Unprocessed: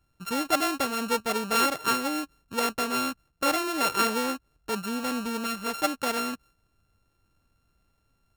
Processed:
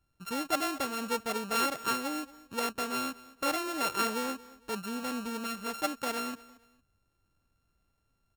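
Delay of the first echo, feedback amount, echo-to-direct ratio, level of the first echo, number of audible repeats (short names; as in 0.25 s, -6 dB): 0.228 s, 30%, -19.5 dB, -20.0 dB, 2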